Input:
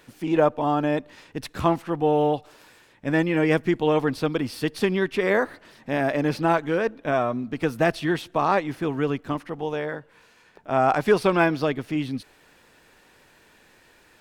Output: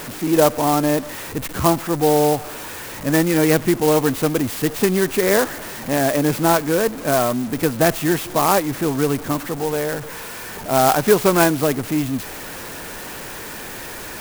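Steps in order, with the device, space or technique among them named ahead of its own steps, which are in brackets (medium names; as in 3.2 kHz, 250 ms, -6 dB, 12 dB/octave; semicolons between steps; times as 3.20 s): early CD player with a faulty converter (jump at every zero crossing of -31 dBFS; sampling jitter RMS 0.068 ms); trim +4 dB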